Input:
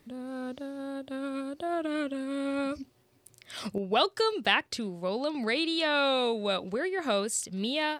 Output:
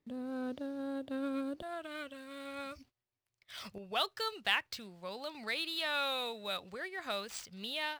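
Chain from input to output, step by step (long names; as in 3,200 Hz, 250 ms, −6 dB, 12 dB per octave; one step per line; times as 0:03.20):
running median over 5 samples
parametric band 290 Hz +2.5 dB 2.4 octaves, from 0:01.62 −13.5 dB
noise gate −57 dBFS, range −17 dB
level −4 dB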